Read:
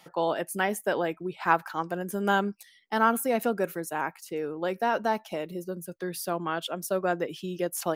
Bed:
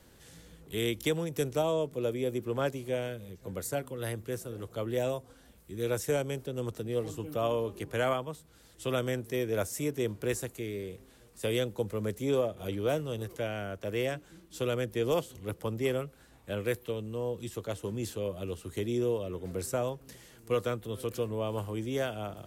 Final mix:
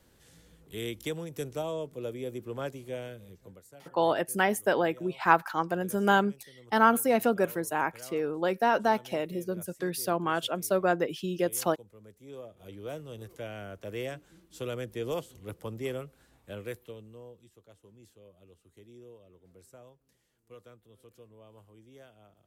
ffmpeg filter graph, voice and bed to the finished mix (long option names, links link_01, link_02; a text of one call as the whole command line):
ffmpeg -i stem1.wav -i stem2.wav -filter_complex "[0:a]adelay=3800,volume=1.5dB[link_01];[1:a]volume=10.5dB,afade=type=out:start_time=3.35:duration=0.26:silence=0.177828,afade=type=in:start_time=12.21:duration=1.45:silence=0.16788,afade=type=out:start_time=16.29:duration=1.2:silence=0.141254[link_02];[link_01][link_02]amix=inputs=2:normalize=0" out.wav